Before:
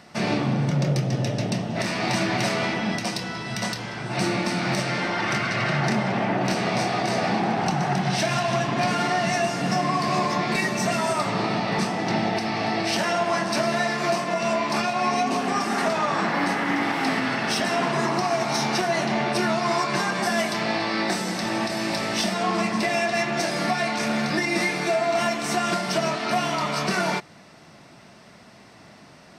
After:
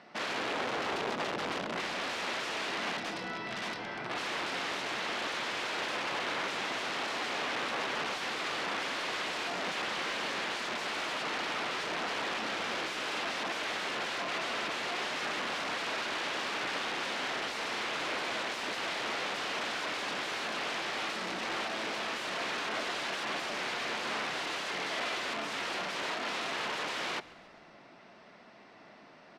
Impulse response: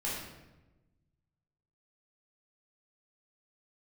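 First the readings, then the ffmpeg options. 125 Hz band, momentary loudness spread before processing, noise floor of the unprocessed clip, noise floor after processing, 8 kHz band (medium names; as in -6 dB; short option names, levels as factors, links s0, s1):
-25.0 dB, 3 LU, -49 dBFS, -55 dBFS, -11.0 dB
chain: -filter_complex "[0:a]aeval=exprs='(mod(13.3*val(0)+1,2)-1)/13.3':c=same,highpass=270,lowpass=3400,asplit=6[s0][s1][s2][s3][s4][s5];[s1]adelay=137,afreqshift=-100,volume=0.0891[s6];[s2]adelay=274,afreqshift=-200,volume=0.0519[s7];[s3]adelay=411,afreqshift=-300,volume=0.0299[s8];[s4]adelay=548,afreqshift=-400,volume=0.0174[s9];[s5]adelay=685,afreqshift=-500,volume=0.0101[s10];[s0][s6][s7][s8][s9][s10]amix=inputs=6:normalize=0,volume=0.596"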